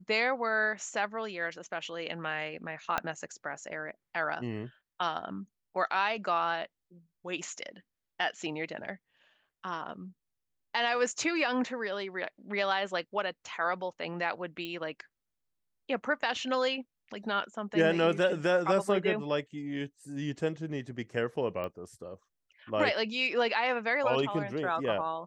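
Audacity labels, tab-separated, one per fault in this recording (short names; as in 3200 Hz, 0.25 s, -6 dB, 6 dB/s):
2.980000	2.980000	pop -14 dBFS
14.650000	14.650000	pop -24 dBFS
21.640000	21.640000	pop -25 dBFS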